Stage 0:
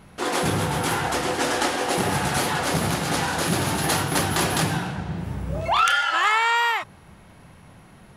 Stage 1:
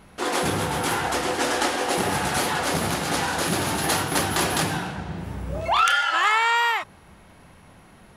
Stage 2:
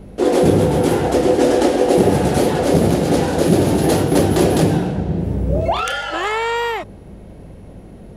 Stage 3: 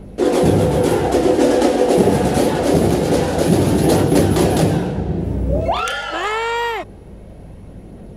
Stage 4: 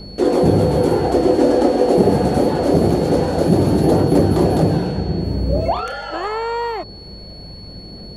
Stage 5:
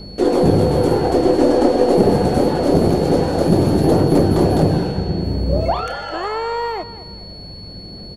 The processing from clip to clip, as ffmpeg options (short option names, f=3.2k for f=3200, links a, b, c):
-af "equalizer=f=130:t=o:w=0.99:g=-5.5"
-af "lowshelf=f=740:t=q:w=1.5:g=13,aeval=exprs='val(0)+0.01*(sin(2*PI*50*n/s)+sin(2*PI*2*50*n/s)/2+sin(2*PI*3*50*n/s)/3+sin(2*PI*4*50*n/s)/4+sin(2*PI*5*50*n/s)/5)':c=same,volume=-1dB"
-af "aphaser=in_gain=1:out_gain=1:delay=4.7:decay=0.21:speed=0.25:type=triangular"
-filter_complex "[0:a]acrossover=split=1300[a][b];[b]acompressor=threshold=-37dB:ratio=6[c];[a][c]amix=inputs=2:normalize=0,aeval=exprs='val(0)+0.0126*sin(2*PI*4400*n/s)':c=same"
-af "aeval=exprs='0.841*(cos(1*acos(clip(val(0)/0.841,-1,1)))-cos(1*PI/2))+0.0473*(cos(4*acos(clip(val(0)/0.841,-1,1)))-cos(4*PI/2))':c=same,aecho=1:1:210|420|630:0.178|0.0605|0.0206"